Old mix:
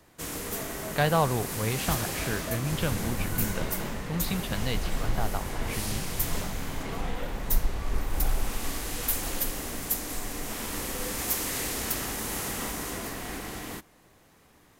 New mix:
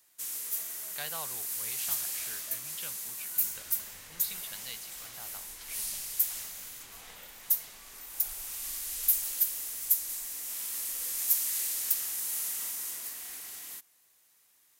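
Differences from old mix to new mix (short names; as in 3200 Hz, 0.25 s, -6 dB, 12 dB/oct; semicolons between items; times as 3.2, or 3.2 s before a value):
second sound: entry +0.75 s; master: add pre-emphasis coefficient 0.97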